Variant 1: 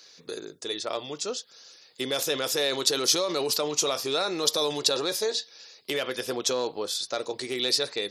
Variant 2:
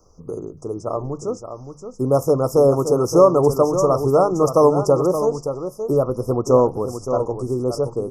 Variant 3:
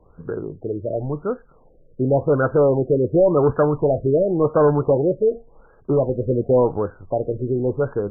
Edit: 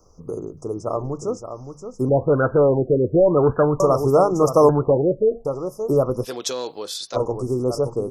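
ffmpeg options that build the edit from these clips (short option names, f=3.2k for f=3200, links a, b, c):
-filter_complex "[2:a]asplit=2[a][b];[1:a]asplit=4[c][d][e][f];[c]atrim=end=2.092[g];[a]atrim=start=2.088:end=3.802[h];[d]atrim=start=3.798:end=4.692[i];[b]atrim=start=4.688:end=5.452[j];[e]atrim=start=5.448:end=6.27[k];[0:a]atrim=start=6.23:end=7.17[l];[f]atrim=start=7.13[m];[g][h]acrossfade=d=0.004:c1=hsin:c2=hsin[n];[n][i]acrossfade=d=0.004:c1=hsin:c2=hsin[o];[o][j]acrossfade=d=0.004:c1=hsin:c2=hsin[p];[p][k]acrossfade=d=0.004:c1=hsin:c2=hsin[q];[q][l]acrossfade=d=0.04:c1=tri:c2=tri[r];[r][m]acrossfade=d=0.04:c1=tri:c2=tri"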